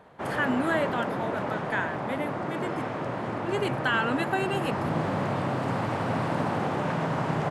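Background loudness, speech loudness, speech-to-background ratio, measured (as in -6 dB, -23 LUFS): -30.0 LUFS, -31.0 LUFS, -1.0 dB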